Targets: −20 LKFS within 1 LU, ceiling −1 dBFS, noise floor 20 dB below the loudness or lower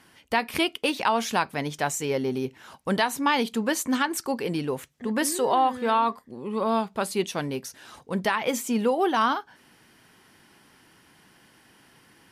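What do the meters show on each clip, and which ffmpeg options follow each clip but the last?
integrated loudness −26.0 LKFS; sample peak −11.0 dBFS; target loudness −20.0 LKFS
→ -af "volume=6dB"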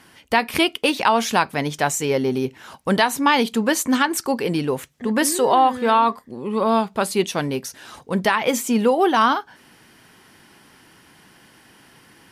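integrated loudness −20.0 LKFS; sample peak −5.0 dBFS; background noise floor −52 dBFS

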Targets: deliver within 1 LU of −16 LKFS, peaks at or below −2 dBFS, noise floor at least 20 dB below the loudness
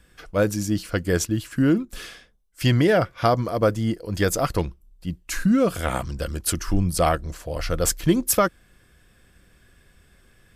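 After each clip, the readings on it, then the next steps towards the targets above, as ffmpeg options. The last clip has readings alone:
integrated loudness −23.0 LKFS; sample peak −5.5 dBFS; target loudness −16.0 LKFS
→ -af "volume=7dB,alimiter=limit=-2dB:level=0:latency=1"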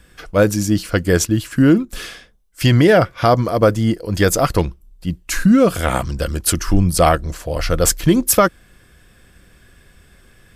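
integrated loudness −16.5 LKFS; sample peak −2.0 dBFS; background noise floor −51 dBFS

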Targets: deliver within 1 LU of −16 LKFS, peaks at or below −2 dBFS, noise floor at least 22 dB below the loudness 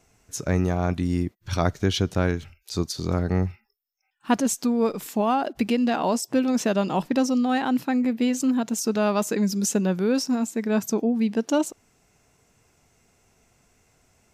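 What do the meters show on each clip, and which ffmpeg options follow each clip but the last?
integrated loudness −24.5 LKFS; sample peak −8.5 dBFS; target loudness −16.0 LKFS
→ -af "volume=8.5dB,alimiter=limit=-2dB:level=0:latency=1"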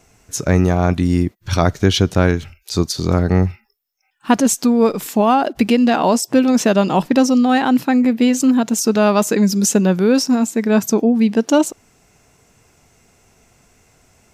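integrated loudness −16.0 LKFS; sample peak −2.0 dBFS; background noise floor −60 dBFS

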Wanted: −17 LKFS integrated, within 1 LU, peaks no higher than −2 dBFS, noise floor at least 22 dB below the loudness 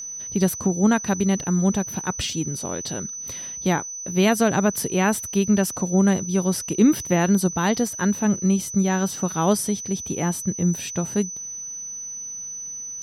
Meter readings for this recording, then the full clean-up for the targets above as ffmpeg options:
interfering tone 6,000 Hz; level of the tone −31 dBFS; integrated loudness −22.5 LKFS; sample peak −5.5 dBFS; target loudness −17.0 LKFS
→ -af "bandreject=frequency=6000:width=30"
-af "volume=5.5dB,alimiter=limit=-2dB:level=0:latency=1"

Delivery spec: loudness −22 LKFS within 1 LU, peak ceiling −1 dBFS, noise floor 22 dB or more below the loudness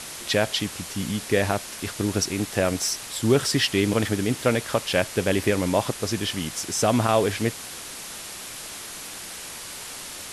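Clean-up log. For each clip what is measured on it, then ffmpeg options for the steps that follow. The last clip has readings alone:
background noise floor −38 dBFS; target noise floor −47 dBFS; integrated loudness −25.0 LKFS; sample peak −6.0 dBFS; target loudness −22.0 LKFS
→ -af "afftdn=noise_reduction=9:noise_floor=-38"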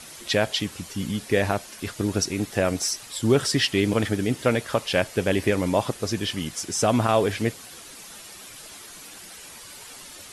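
background noise floor −43 dBFS; target noise floor −47 dBFS
→ -af "afftdn=noise_reduction=6:noise_floor=-43"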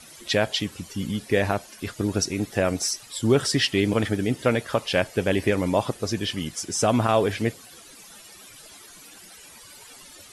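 background noise floor −47 dBFS; integrated loudness −24.5 LKFS; sample peak −6.5 dBFS; target loudness −22.0 LKFS
→ -af "volume=2.5dB"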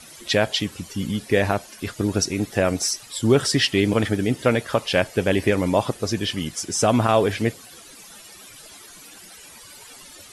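integrated loudness −22.0 LKFS; sample peak −4.0 dBFS; background noise floor −45 dBFS

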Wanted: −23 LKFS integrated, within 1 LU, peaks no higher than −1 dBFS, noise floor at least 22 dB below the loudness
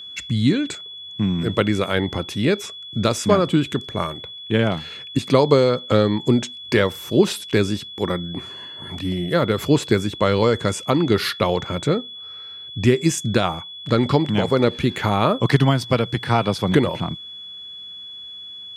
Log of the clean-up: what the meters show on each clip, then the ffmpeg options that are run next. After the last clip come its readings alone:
interfering tone 3,400 Hz; level of the tone −34 dBFS; integrated loudness −20.5 LKFS; sample peak −2.5 dBFS; target loudness −23.0 LKFS
→ -af "bandreject=frequency=3400:width=30"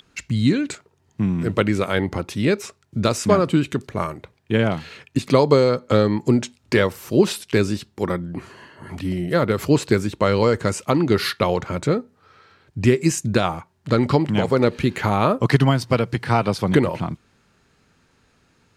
interfering tone none found; integrated loudness −20.5 LKFS; sample peak −2.5 dBFS; target loudness −23.0 LKFS
→ -af "volume=-2.5dB"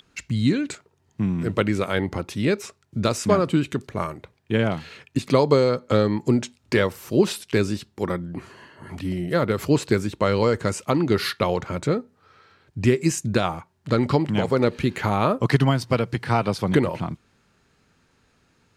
integrated loudness −23.0 LKFS; sample peak −5.0 dBFS; background noise floor −65 dBFS

